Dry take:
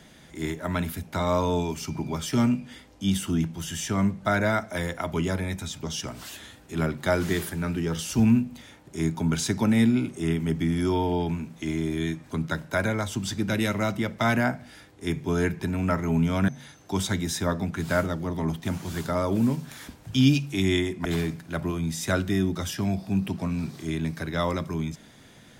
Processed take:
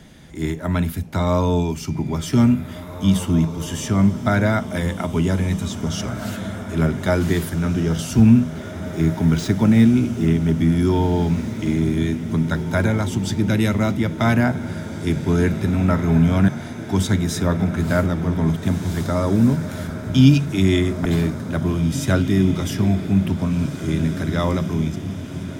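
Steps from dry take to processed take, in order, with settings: 8.21–10.57 s: median filter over 5 samples; bass shelf 280 Hz +8.5 dB; echo that smears into a reverb 1948 ms, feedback 62%, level -11 dB; trim +2 dB

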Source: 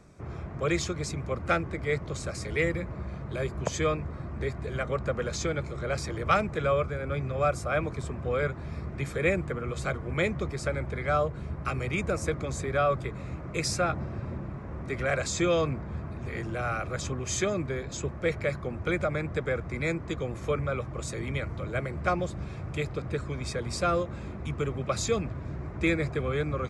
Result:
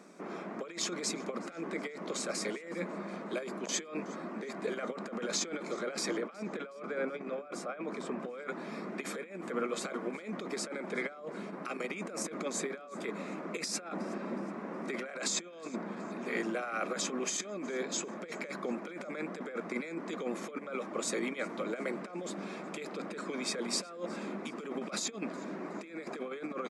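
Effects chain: 6.17–8.20 s: low-pass 2.9 kHz 6 dB/octave; compressor with a negative ratio -33 dBFS, ratio -0.5; brick-wall FIR high-pass 180 Hz; feedback delay 368 ms, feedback 44%, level -23 dB

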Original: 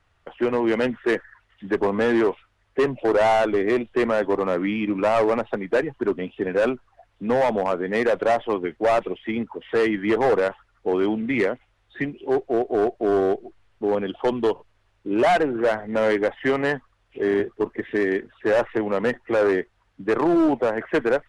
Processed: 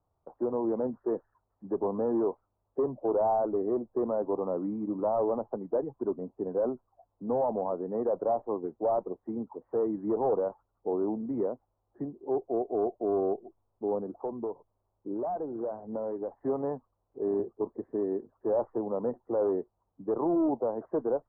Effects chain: 13.98–16.32 s: compression, threshold -23 dBFS, peak gain reduction 7 dB; steep low-pass 1 kHz 36 dB/octave; bass shelf 71 Hz -10.5 dB; trim -7.5 dB

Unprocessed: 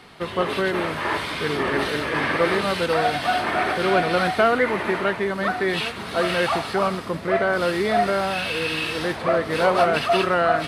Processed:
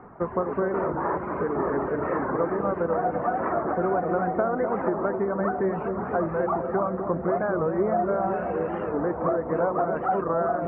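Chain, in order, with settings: reverb removal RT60 0.58 s; compression, threshold -25 dBFS, peak gain reduction 11.5 dB; inverse Chebyshev low-pass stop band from 3.3 kHz, stop band 50 dB; hum notches 50/100/150 Hz; feedback echo behind a low-pass 250 ms, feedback 69%, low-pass 910 Hz, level -6.5 dB; warped record 45 rpm, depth 160 cents; trim +3.5 dB

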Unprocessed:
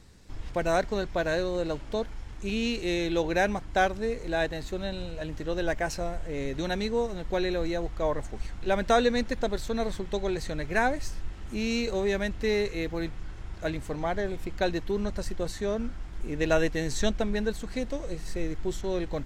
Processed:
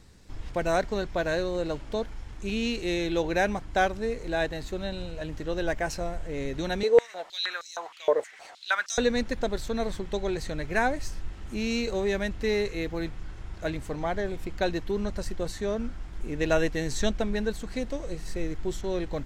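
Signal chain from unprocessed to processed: 6.83–8.98 s: step-sequenced high-pass 6.4 Hz 470–5600 Hz

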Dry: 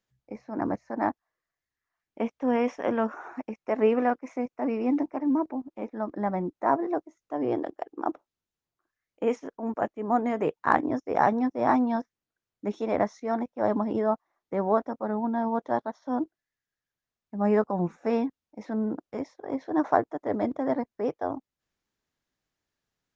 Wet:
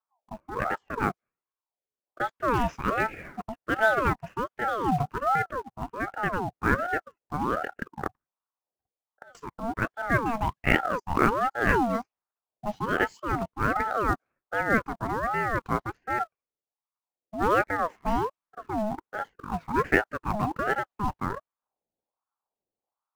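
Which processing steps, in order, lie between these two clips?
level-controlled noise filter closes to 360 Hz, open at -23.5 dBFS; in parallel at -9 dB: companded quantiser 4-bit; 8.07–9.35 s: on the sum: inverted gate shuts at -28 dBFS, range -28 dB; ring modulator with a swept carrier 760 Hz, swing 45%, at 1.3 Hz

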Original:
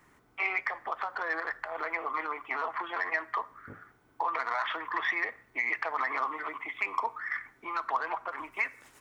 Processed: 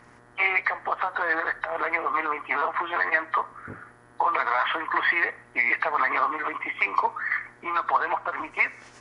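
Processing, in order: knee-point frequency compression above 3 kHz 1.5:1; mains buzz 120 Hz, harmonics 16, -64 dBFS -1 dB/octave; loudspeaker Doppler distortion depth 0.16 ms; trim +7.5 dB

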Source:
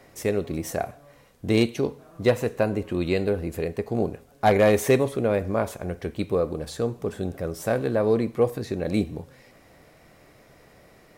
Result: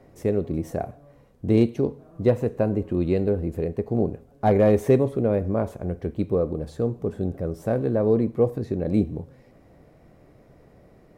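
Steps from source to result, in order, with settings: tilt shelf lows +8.5 dB; trim -4.5 dB

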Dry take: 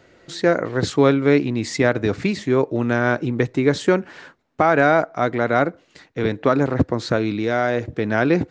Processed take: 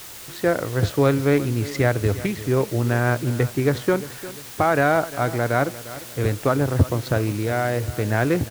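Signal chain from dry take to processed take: local Wiener filter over 9 samples; resonant low shelf 140 Hz +7.5 dB, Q 1.5; word length cut 6-bit, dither triangular; on a send: feedback delay 351 ms, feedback 40%, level -16 dB; on the sum: loudspeaker Doppler distortion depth 0.33 ms; trim -2.5 dB

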